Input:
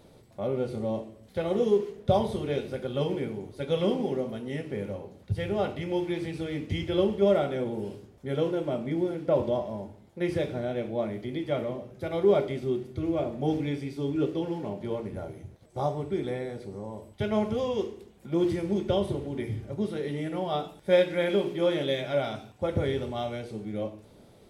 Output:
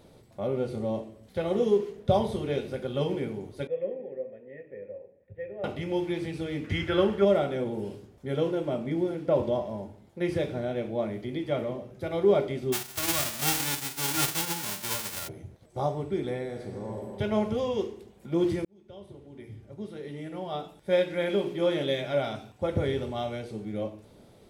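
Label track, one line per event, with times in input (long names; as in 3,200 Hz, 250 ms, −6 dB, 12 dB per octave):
3.670000	5.640000	formant resonators in series e
6.640000	7.250000	parametric band 1,500 Hz +14.5 dB 0.91 octaves
12.720000	15.270000	spectral envelope flattened exponent 0.1
16.460000	17.110000	thrown reverb, RT60 2.7 s, DRR 1 dB
18.650000	21.830000	fade in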